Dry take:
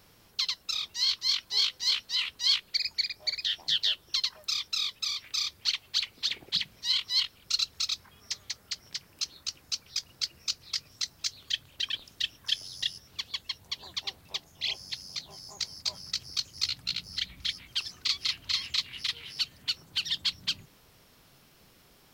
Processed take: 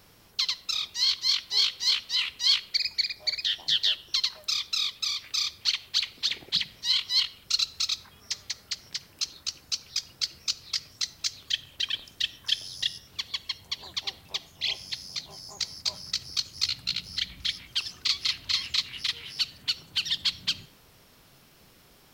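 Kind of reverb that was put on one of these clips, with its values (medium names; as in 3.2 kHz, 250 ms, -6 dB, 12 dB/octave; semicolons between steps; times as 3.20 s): algorithmic reverb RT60 0.73 s, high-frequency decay 0.65×, pre-delay 15 ms, DRR 18.5 dB; trim +2.5 dB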